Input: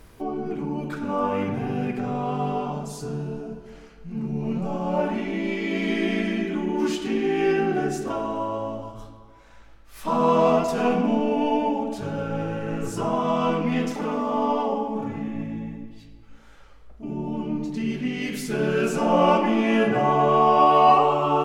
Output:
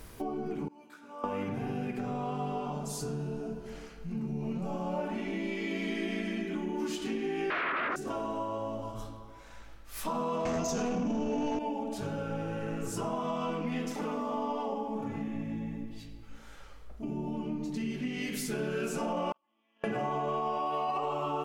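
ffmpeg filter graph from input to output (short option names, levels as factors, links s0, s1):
-filter_complex "[0:a]asettb=1/sr,asplit=3[s0][s1][s2];[s0]atrim=end=0.684[s3];[s1]atrim=start=0.68:end=1.24,asetpts=PTS-STARTPTS,afade=t=in:d=0.004:c=qsin,afade=t=out:st=0.556:d=0.004:c=qsin,lowpass=f=1000:p=1,aderivative,asplit=2[s4][s5];[s5]adelay=17,volume=0.708[s6];[s4][s6]amix=inputs=2:normalize=0,atrim=end_sample=24696[s7];[s2]atrim=start=1.236[s8];[s3][s7]acrossfade=d=0.004:c1=hsin:c2=qsin[s9];[s9][s8]acrossfade=d=0.004:c1=qsin:c2=hsin,asettb=1/sr,asplit=3[s10][s11][s12];[s10]atrim=end=7.504[s13];[s11]atrim=start=7.5:end=7.96,asetpts=PTS-STARTPTS,afade=t=in:d=0.004:c=qsin,afade=t=out:st=0.456:d=0.004:c=qsin,aeval=exprs='0.266*sin(PI/2*7.94*val(0)/0.266)':c=same,highpass=360,equalizer=f=510:t=q:w=4:g=-5,equalizer=f=860:t=q:w=4:g=-9,equalizer=f=1300:t=q:w=4:g=5,lowpass=f=2300:w=0.5412,lowpass=f=2300:w=1.3066[s14];[s12]atrim=start=7.956[s15];[s13][s14]acrossfade=d=0.004:c1=hsin:c2=qsin[s16];[s16][s15]acrossfade=d=0.004:c1=qsin:c2=hsin,asettb=1/sr,asplit=3[s17][s18][s19];[s17]atrim=end=10.454[s20];[s18]atrim=start=10.45:end=11.59,asetpts=PTS-STARTPTS,afade=t=in:d=0.004:c=qsin,afade=t=out:st=1.136:d=0.004:c=qsin,lowpass=f=6300:t=q:w=6.9,aeval=exprs='0.398*sin(PI/2*2*val(0)/0.398)':c=same,lowshelf=f=340:g=9.5[s21];[s19]atrim=start=11.586[s22];[s20][s21]acrossfade=d=0.004:c1=hsin:c2=qsin[s23];[s23][s22]acrossfade=d=0.004:c1=qsin:c2=hsin,asettb=1/sr,asplit=3[s24][s25][s26];[s24]atrim=end=19.324[s27];[s25]atrim=start=19.32:end=19.84,asetpts=PTS-STARTPTS,afade=t=in:d=0.004:c=qsin,afade=t=out:st=0.516:d=0.004:c=qsin,agate=range=0.00282:threshold=0.2:ratio=16:release=100:detection=peak,highpass=320,equalizer=f=430:t=q:w=4:g=-8,equalizer=f=1100:t=q:w=4:g=9,equalizer=f=3200:t=q:w=4:g=10,lowpass=f=6500:w=0.5412,lowpass=f=6500:w=1.3066[s28];[s26]atrim=start=19.836[s29];[s27][s28]acrossfade=d=0.004:c1=hsin:c2=qsin[s30];[s30][s29]acrossfade=d=0.004:c1=qsin:c2=hsin,highshelf=f=5600:g=6.5,alimiter=limit=0.237:level=0:latency=1:release=25,acompressor=threshold=0.02:ratio=3"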